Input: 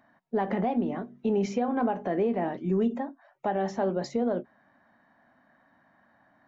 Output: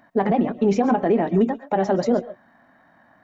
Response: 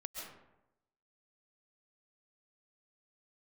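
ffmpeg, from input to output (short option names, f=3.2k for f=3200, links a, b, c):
-filter_complex "[0:a]acontrast=35,atempo=2,asplit=2[a][b];[1:a]atrim=start_sample=2205,afade=t=out:st=0.19:d=0.01,atrim=end_sample=8820[c];[b][c]afir=irnorm=-1:irlink=0,volume=-2.5dB[d];[a][d]amix=inputs=2:normalize=0"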